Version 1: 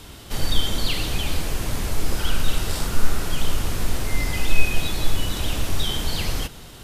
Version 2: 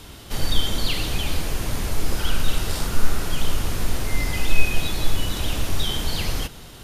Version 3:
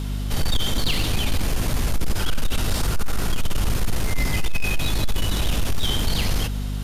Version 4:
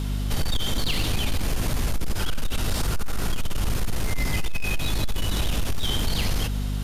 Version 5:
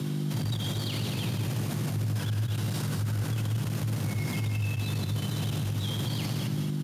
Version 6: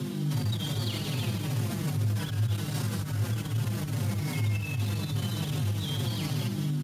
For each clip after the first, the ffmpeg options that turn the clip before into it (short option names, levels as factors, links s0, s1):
-af "bandreject=f=7800:w=22"
-filter_complex "[0:a]acrossover=split=310|4800[s0][s1][s2];[s0]alimiter=limit=0.299:level=0:latency=1:release=220[s3];[s3][s1][s2]amix=inputs=3:normalize=0,aeval=exprs='val(0)+0.0398*(sin(2*PI*50*n/s)+sin(2*PI*2*50*n/s)/2+sin(2*PI*3*50*n/s)/3+sin(2*PI*4*50*n/s)/4+sin(2*PI*5*50*n/s)/5)':c=same,asoftclip=type=tanh:threshold=0.141,volume=1.5"
-af "acompressor=threshold=0.112:ratio=6"
-filter_complex "[0:a]asplit=2[s0][s1];[s1]aecho=0:1:160|219:0.316|0.355[s2];[s0][s2]amix=inputs=2:normalize=0,afreqshift=100,alimiter=limit=0.1:level=0:latency=1:release=69,volume=0.75"
-filter_complex "[0:a]asplit=2[s0][s1];[s1]adelay=5.1,afreqshift=-2.5[s2];[s0][s2]amix=inputs=2:normalize=1,volume=1.41"